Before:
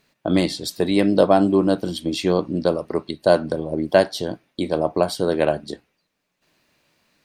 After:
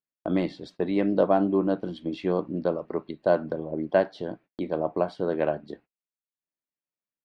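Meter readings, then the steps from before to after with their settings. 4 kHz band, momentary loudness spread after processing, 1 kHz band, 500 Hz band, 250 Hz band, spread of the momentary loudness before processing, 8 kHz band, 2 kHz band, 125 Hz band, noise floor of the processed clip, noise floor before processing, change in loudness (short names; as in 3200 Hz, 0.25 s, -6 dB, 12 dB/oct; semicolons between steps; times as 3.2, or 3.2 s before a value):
-16.5 dB, 12 LU, -6.0 dB, -6.0 dB, -6.5 dB, 12 LU, under -25 dB, -8.0 dB, -7.5 dB, under -85 dBFS, -75 dBFS, -6.5 dB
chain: LPF 2100 Hz 12 dB/oct; gate -42 dBFS, range -30 dB; bell 86 Hz -7.5 dB 0.84 oct; gain -6 dB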